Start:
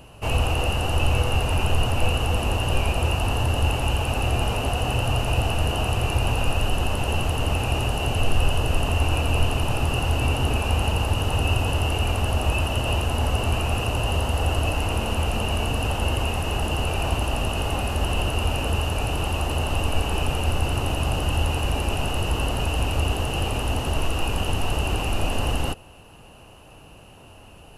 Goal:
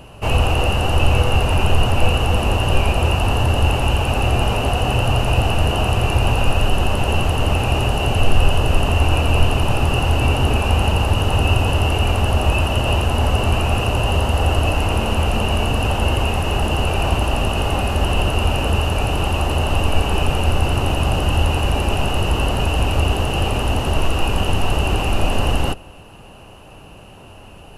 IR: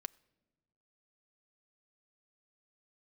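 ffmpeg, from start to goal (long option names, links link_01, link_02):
-filter_complex "[0:a]asplit=2[link_01][link_02];[1:a]atrim=start_sample=2205,highshelf=frequency=5400:gain=-8.5[link_03];[link_02][link_03]afir=irnorm=-1:irlink=0,volume=10dB[link_04];[link_01][link_04]amix=inputs=2:normalize=0,volume=-3.5dB"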